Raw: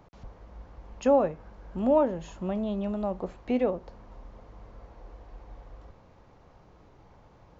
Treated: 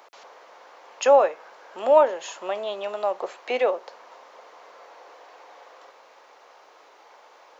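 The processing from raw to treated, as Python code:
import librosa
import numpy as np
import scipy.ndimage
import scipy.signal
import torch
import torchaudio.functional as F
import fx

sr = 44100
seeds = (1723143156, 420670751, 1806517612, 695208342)

y = scipy.signal.sosfilt(scipy.signal.butter(4, 430.0, 'highpass', fs=sr, output='sos'), x)
y = fx.tilt_shelf(y, sr, db=-5.5, hz=810.0)
y = F.gain(torch.from_numpy(y), 8.5).numpy()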